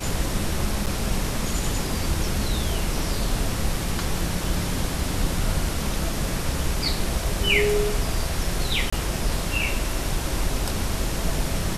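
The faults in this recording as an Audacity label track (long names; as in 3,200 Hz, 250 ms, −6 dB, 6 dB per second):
0.860000	0.870000	drop-out 7.5 ms
8.900000	8.930000	drop-out 25 ms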